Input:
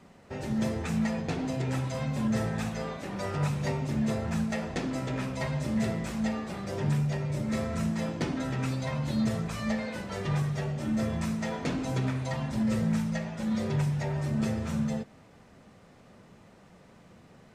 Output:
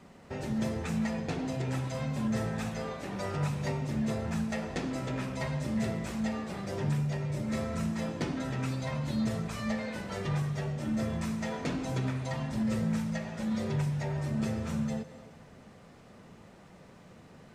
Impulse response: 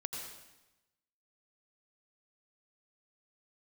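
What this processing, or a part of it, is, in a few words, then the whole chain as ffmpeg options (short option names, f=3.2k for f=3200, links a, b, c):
compressed reverb return: -filter_complex "[0:a]asplit=2[a][b];[1:a]atrim=start_sample=2205[c];[b][c]afir=irnorm=-1:irlink=0,acompressor=threshold=-39dB:ratio=6,volume=-0.5dB[d];[a][d]amix=inputs=2:normalize=0,volume=-4dB"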